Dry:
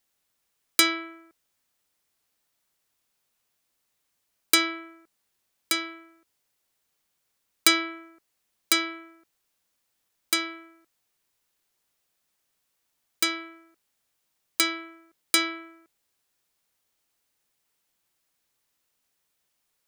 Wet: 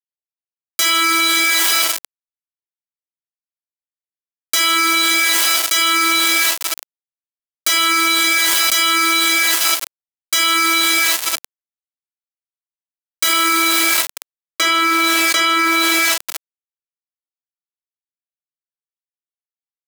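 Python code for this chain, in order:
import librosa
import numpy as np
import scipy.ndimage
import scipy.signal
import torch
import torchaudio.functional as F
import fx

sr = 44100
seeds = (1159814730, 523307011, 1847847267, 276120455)

y = fx.lowpass(x, sr, hz=1700.0, slope=6, at=(13.23, 15.58))
y = fx.rev_double_slope(y, sr, seeds[0], early_s=0.51, late_s=2.2, knee_db=-20, drr_db=-8.5)
y = fx.quant_dither(y, sr, seeds[1], bits=8, dither='none')
y = fx.fold_sine(y, sr, drive_db=9, ceiling_db=3.0)
y = scipy.signal.sosfilt(scipy.signal.butter(2, 530.0, 'highpass', fs=sr, output='sos'), y)
y = fx.env_flatten(y, sr, amount_pct=100)
y = F.gain(torch.from_numpy(y), -14.5).numpy()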